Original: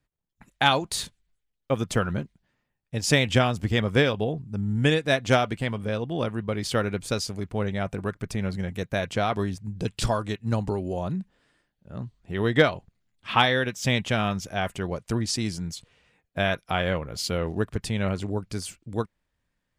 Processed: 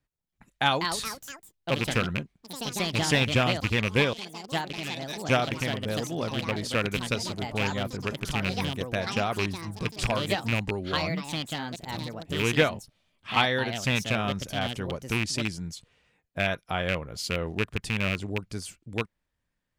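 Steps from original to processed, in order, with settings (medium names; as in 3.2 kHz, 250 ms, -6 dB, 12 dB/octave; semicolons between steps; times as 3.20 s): rattle on loud lows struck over -23 dBFS, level -12 dBFS; 4.13–5.29 s: band-pass filter 5.5 kHz, Q 1.8; ever faster or slower copies 324 ms, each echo +4 st, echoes 3, each echo -6 dB; trim -3.5 dB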